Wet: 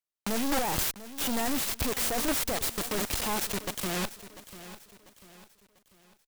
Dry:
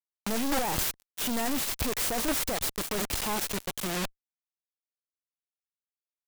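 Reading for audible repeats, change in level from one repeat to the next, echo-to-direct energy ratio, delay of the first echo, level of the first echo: 3, -7.5 dB, -14.0 dB, 0.694 s, -15.0 dB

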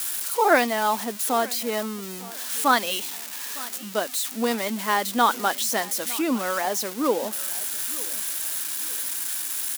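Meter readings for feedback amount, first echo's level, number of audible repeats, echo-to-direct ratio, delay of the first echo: 32%, -20.0 dB, 2, -19.5 dB, 0.907 s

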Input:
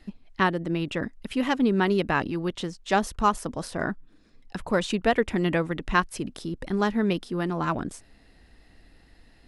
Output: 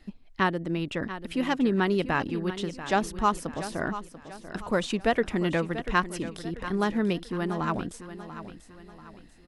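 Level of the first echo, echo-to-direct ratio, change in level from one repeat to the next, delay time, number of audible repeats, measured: -12.5 dB, -11.5 dB, -7.5 dB, 0.689 s, 3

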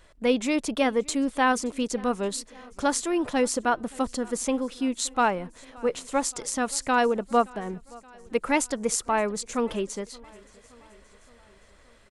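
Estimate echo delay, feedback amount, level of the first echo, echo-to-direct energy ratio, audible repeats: 0.573 s, 60%, -24.0 dB, -22.0 dB, 3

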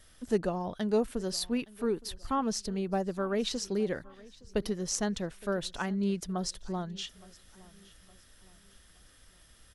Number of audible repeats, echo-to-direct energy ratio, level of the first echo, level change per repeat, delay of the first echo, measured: 2, -22.0 dB, -22.5 dB, -8.0 dB, 0.866 s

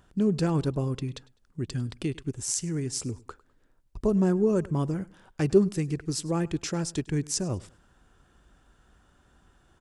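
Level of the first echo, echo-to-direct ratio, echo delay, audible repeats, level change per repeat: -22.0 dB, -21.5 dB, 0.102 s, 2, -10.0 dB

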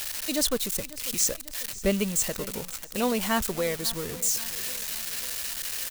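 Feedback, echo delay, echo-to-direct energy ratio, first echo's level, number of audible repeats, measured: 55%, 0.546 s, -16.5 dB, -18.0 dB, 4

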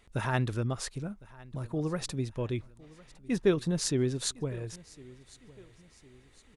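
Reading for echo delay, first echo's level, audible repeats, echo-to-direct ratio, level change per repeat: 1.057 s, -22.0 dB, 2, -21.0 dB, -7.5 dB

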